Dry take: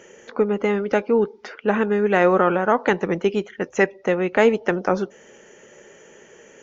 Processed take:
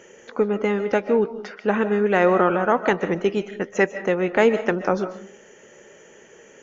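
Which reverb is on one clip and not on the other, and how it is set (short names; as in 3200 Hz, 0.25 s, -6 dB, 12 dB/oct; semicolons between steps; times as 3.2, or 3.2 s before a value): digital reverb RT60 0.41 s, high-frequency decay 0.5×, pre-delay 0.105 s, DRR 11.5 dB; gain -1 dB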